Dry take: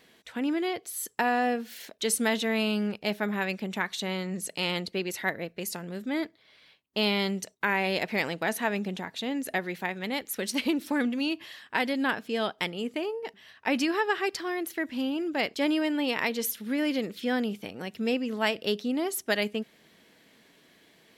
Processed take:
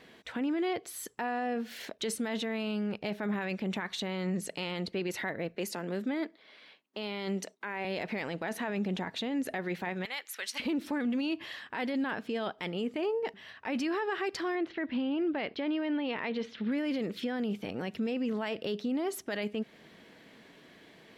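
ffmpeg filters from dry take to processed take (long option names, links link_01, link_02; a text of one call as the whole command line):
ffmpeg -i in.wav -filter_complex "[0:a]asettb=1/sr,asplit=3[link_01][link_02][link_03];[link_01]atrim=end=5.554[link_04];[link_02]atrim=start=5.55:end=7.85,asetpts=PTS-STARTPTS,afade=type=in:duration=0.004:curve=qsin,afade=type=out:start_time=2.296:duration=0.004:curve=qsin,highpass=frequency=200:width=0.5412,highpass=frequency=200:width=1.3066[link_05];[link_03]atrim=start=7.846[link_06];[link_04][link_05]acrossfade=duration=0.004:curve1=hsin:curve2=qsin[link_07];[link_07][link_06]acrossfade=duration=0.004:curve1=qsin:curve2=hsin,asettb=1/sr,asplit=3[link_08][link_09][link_10];[link_08]atrim=end=10.054[link_11];[link_09]atrim=start=10.05:end=10.6,asetpts=PTS-STARTPTS,afade=type=in:duration=0.004:curve=qsin,afade=type=out:start_time=0.546:duration=0.004:curve=qsin,highpass=1300[link_12];[link_10]atrim=start=10.596[link_13];[link_11][link_12]acrossfade=duration=0.004:curve1=hsin:curve2=qsin[link_14];[link_14][link_13]acrossfade=duration=0.004:curve1=qsin:curve2=hsin,asettb=1/sr,asplit=3[link_15][link_16][link_17];[link_15]atrim=end=14.554[link_18];[link_16]atrim=start=14.55:end=16.72,asetpts=PTS-STARTPTS,afade=type=in:duration=0.004:curve=qsin,afade=type=out:start_time=2.166:duration=0.004:curve=qsin,lowpass=frequency=4000:width=0.5412,lowpass=frequency=4000:width=1.3066[link_19];[link_17]atrim=start=16.716[link_20];[link_18][link_19]acrossfade=duration=0.004:curve1=hsin:curve2=qsin[link_21];[link_21][link_20]acrossfade=duration=0.004:curve1=qsin:curve2=hsin,acompressor=threshold=-34dB:ratio=2,lowpass=frequency=2600:poles=1,alimiter=level_in=6.5dB:limit=-24dB:level=0:latency=1:release=10,volume=-6.5dB,volume=5.5dB" out.wav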